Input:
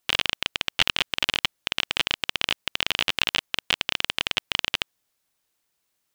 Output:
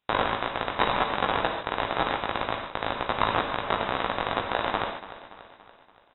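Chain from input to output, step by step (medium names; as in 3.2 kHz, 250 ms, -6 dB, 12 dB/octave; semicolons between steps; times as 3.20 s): 2.11–3.09 s: cycle switcher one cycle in 2, muted; bass shelf 320 Hz +3 dB; in parallel at -1 dB: level held to a coarse grid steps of 12 dB; on the sum: hard clipper -6.5 dBFS, distortion -10 dB; chorus 2 Hz, delay 16 ms, depth 2.9 ms; feedback delay 286 ms, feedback 55%, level -15 dB; on a send at -1.5 dB: reverberation, pre-delay 3 ms; on the sum: frequency inversion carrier 3.8 kHz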